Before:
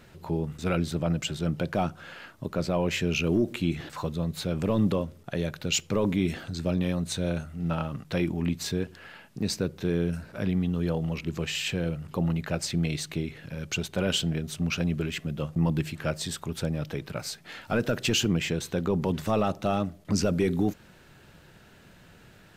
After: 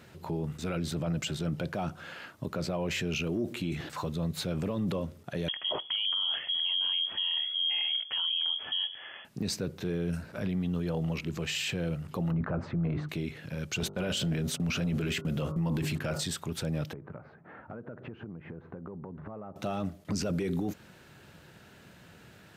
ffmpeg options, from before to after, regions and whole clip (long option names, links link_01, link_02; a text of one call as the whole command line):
ffmpeg -i in.wav -filter_complex "[0:a]asettb=1/sr,asplit=3[link_01][link_02][link_03];[link_01]atrim=end=5.484[link_04];[link_02]atrim=start=5.48:end=9.25,asetpts=PTS-STARTPTS,afade=type=in:duration=0.004:curve=qsin,afade=type=out:start_time=3.766:duration=0.004:curve=qsin,lowshelf=frequency=390:gain=8,lowpass=frequency=2900:width_type=q:width=0.5098,lowpass=frequency=2900:width_type=q:width=0.6013,lowpass=frequency=2900:width_type=q:width=0.9,lowpass=frequency=2900:width_type=q:width=2.563,afreqshift=-3400[link_05];[link_03]atrim=start=9.246[link_06];[link_04][link_05]acrossfade=duration=0.004:curve1=hsin:curve2=qsin[link_07];[link_07][link_06]acrossfade=duration=0.004:curve1=qsin:curve2=hsin,asettb=1/sr,asplit=3[link_08][link_09][link_10];[link_08]atrim=end=12.314[link_11];[link_09]atrim=start=12.31:end=13.09,asetpts=PTS-STARTPTS,afade=type=in:duration=0.004:curve=qsin,afade=type=out:start_time=0.776:duration=0.004:curve=qsin,lowpass=frequency=1200:width_type=q:width=2.6,lowshelf=frequency=450:gain=8,bandreject=frequency=50:width_type=h:width=6,bandreject=frequency=100:width_type=h:width=6,bandreject=frequency=150:width_type=h:width=6,bandreject=frequency=200:width_type=h:width=6,bandreject=frequency=250:width_type=h:width=6,bandreject=frequency=300:width_type=h:width=6[link_12];[link_10]atrim=start=13.086[link_13];[link_11][link_12]acrossfade=duration=0.004:curve1=hsin:curve2=qsin[link_14];[link_14][link_13]acrossfade=duration=0.004:curve1=qsin:curve2=hsin,asettb=1/sr,asplit=3[link_15][link_16][link_17];[link_15]atrim=end=13.804[link_18];[link_16]atrim=start=13.8:end=16.24,asetpts=PTS-STARTPTS,afade=type=in:duration=0.004:curve=qsin,afade=type=out:start_time=2.436:duration=0.004:curve=qsin,agate=range=-41dB:threshold=-40dB:ratio=16:release=100:detection=peak,bandreject=frequency=49.85:width_type=h:width=4,bandreject=frequency=99.7:width_type=h:width=4,bandreject=frequency=149.55:width_type=h:width=4,bandreject=frequency=199.4:width_type=h:width=4,bandreject=frequency=249.25:width_type=h:width=4,bandreject=frequency=299.1:width_type=h:width=4,bandreject=frequency=348.95:width_type=h:width=4,bandreject=frequency=398.8:width_type=h:width=4,bandreject=frequency=448.65:width_type=h:width=4,bandreject=frequency=498.5:width_type=h:width=4,bandreject=frequency=548.35:width_type=h:width=4,bandreject=frequency=598.2:width_type=h:width=4,bandreject=frequency=648.05:width_type=h:width=4,bandreject=frequency=697.9:width_type=h:width=4,bandreject=frequency=747.75:width_type=h:width=4,bandreject=frequency=797.6:width_type=h:width=4,bandreject=frequency=847.45:width_type=h:width=4,bandreject=frequency=897.3:width_type=h:width=4,bandreject=frequency=947.15:width_type=h:width=4,bandreject=frequency=997:width_type=h:width=4,bandreject=frequency=1046.85:width_type=h:width=4,bandreject=frequency=1096.7:width_type=h:width=4,bandreject=frequency=1146.55:width_type=h:width=4,bandreject=frequency=1196.4:width_type=h:width=4,bandreject=frequency=1246.25:width_type=h:width=4,bandreject=frequency=1296.1:width_type=h:width=4,bandreject=frequency=1345.95:width_type=h:width=4,bandreject=frequency=1395.8:width_type=h:width=4,bandreject=frequency=1445.65:width_type=h:width=4,acontrast=79[link_19];[link_17]atrim=start=16.236[link_20];[link_18][link_19]acrossfade=duration=0.004:curve1=hsin:curve2=qsin[link_21];[link_21][link_20]acrossfade=duration=0.004:curve1=qsin:curve2=hsin,asettb=1/sr,asplit=3[link_22][link_23][link_24];[link_22]atrim=end=16.934[link_25];[link_23]atrim=start=16.93:end=19.56,asetpts=PTS-STARTPTS,afade=type=in:duration=0.004:curve=qsin,afade=type=out:start_time=2.626:duration=0.004:curve=qsin,lowpass=frequency=1400:width=0.5412,lowpass=frequency=1400:width=1.3066,acompressor=threshold=-38dB:ratio=12:attack=3.2:release=140:knee=1:detection=peak[link_26];[link_24]atrim=start=19.556[link_27];[link_25][link_26]acrossfade=duration=0.004:curve1=hsin:curve2=qsin[link_28];[link_28][link_27]acrossfade=duration=0.004:curve1=qsin:curve2=hsin,highpass=69,alimiter=limit=-24dB:level=0:latency=1:release=11" out.wav